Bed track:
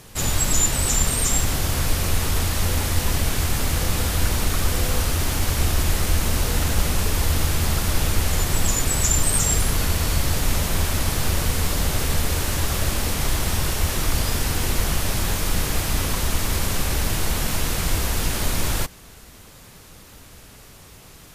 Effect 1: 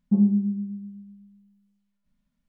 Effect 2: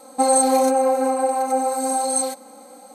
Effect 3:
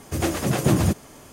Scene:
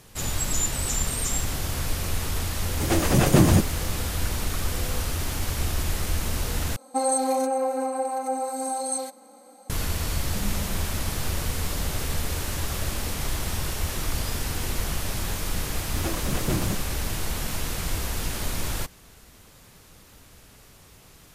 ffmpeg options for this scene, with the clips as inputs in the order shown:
ffmpeg -i bed.wav -i cue0.wav -i cue1.wav -i cue2.wav -filter_complex "[3:a]asplit=2[link_01][link_02];[0:a]volume=-6dB[link_03];[link_01]dynaudnorm=framelen=130:gausssize=5:maxgain=8.5dB[link_04];[1:a]aeval=exprs='val(0)+0.5*0.0178*sgn(val(0))':channel_layout=same[link_05];[link_03]asplit=2[link_06][link_07];[link_06]atrim=end=6.764[link_08];[2:a]atrim=end=2.94,asetpts=PTS-STARTPTS,volume=-7dB[link_09];[link_07]atrim=start=9.696[link_10];[link_04]atrim=end=1.32,asetpts=PTS-STARTPTS,volume=-2dB,afade=type=in:duration=0.004:curve=hsin,afade=type=out:start_time=1.316:duration=0.004:curve=hsin,adelay=2680[link_11];[link_05]atrim=end=2.48,asetpts=PTS-STARTPTS,volume=-17.5dB,afade=type=in:duration=0.004:curve=hsin,afade=type=out:start_time=2.476:duration=0.004:curve=hsin,adelay=10230[link_12];[link_02]atrim=end=1.32,asetpts=PTS-STARTPTS,volume=-8dB,afade=type=in:duration=0.004:curve=hsin,afade=type=out:start_time=1.316:duration=0.004:curve=hsin,adelay=15820[link_13];[link_08][link_09]acrossfade=duration=0.004:curve1=hsin:curve2=hsin[link_14];[link_14][link_10]acrossfade=duration=0.004:curve1=hsin:curve2=hsin[link_15];[link_15][link_11][link_12][link_13]amix=inputs=4:normalize=0" out.wav

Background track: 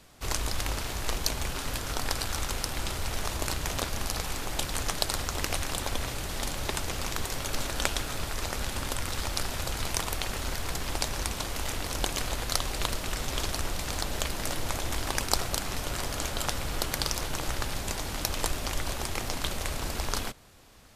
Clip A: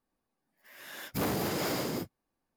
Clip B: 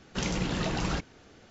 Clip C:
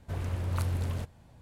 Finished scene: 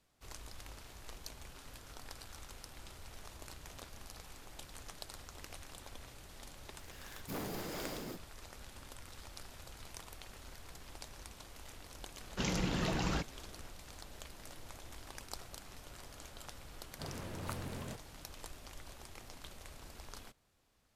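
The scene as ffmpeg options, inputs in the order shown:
ffmpeg -i bed.wav -i cue0.wav -i cue1.wav -i cue2.wav -filter_complex "[0:a]volume=-19.5dB[link_01];[3:a]highpass=frequency=130:width=0.5412,highpass=frequency=130:width=1.3066[link_02];[1:a]atrim=end=2.56,asetpts=PTS-STARTPTS,volume=-10.5dB,afade=type=in:duration=0.004:curve=hsin,afade=type=out:start_time=2.556:duration=0.004:curve=hsin,adelay=6130[link_03];[2:a]atrim=end=1.5,asetpts=PTS-STARTPTS,volume=-4.5dB,afade=type=in:duration=0.004:curve=hsin,afade=type=out:start_time=1.496:duration=0.004:curve=hsin,adelay=12220[link_04];[link_02]atrim=end=1.41,asetpts=PTS-STARTPTS,volume=-4.5dB,afade=type=in:duration=0.004:curve=hsin,afade=type=out:start_time=1.406:duration=0.004:curve=hsin,adelay=16910[link_05];[link_01][link_03][link_04][link_05]amix=inputs=4:normalize=0" out.wav

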